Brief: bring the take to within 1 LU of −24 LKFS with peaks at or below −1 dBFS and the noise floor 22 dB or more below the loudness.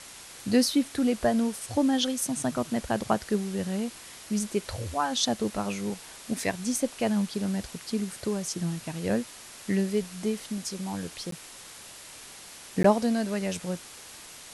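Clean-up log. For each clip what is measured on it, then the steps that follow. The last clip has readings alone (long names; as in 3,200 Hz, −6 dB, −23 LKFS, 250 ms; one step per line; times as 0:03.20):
number of dropouts 2; longest dropout 13 ms; background noise floor −46 dBFS; target noise floor −51 dBFS; integrated loudness −29.0 LKFS; sample peak −8.5 dBFS; target loudness −24.0 LKFS
→ repair the gap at 0:11.31/0:12.83, 13 ms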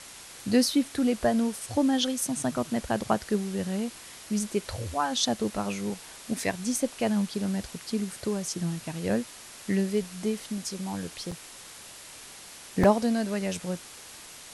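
number of dropouts 0; background noise floor −46 dBFS; target noise floor −51 dBFS
→ noise reduction from a noise print 6 dB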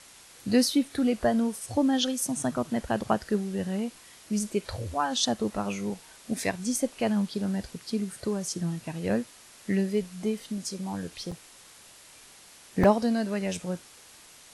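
background noise floor −52 dBFS; integrated loudness −29.0 LKFS; sample peak −8.5 dBFS; target loudness −24.0 LKFS
→ level +5 dB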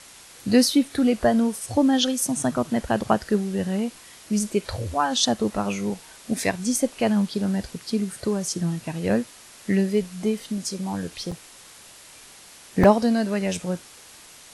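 integrated loudness −24.0 LKFS; sample peak −3.5 dBFS; background noise floor −47 dBFS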